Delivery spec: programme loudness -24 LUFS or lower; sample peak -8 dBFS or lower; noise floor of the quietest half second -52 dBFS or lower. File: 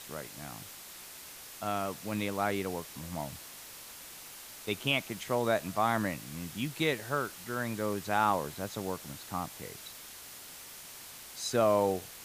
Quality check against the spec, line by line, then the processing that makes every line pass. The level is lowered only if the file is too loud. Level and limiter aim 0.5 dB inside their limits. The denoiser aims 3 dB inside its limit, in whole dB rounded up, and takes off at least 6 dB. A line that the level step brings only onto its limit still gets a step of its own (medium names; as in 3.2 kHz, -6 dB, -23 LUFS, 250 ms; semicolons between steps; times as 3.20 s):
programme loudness -33.0 LUFS: pass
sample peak -13.5 dBFS: pass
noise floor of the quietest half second -48 dBFS: fail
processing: noise reduction 7 dB, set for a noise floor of -48 dBFS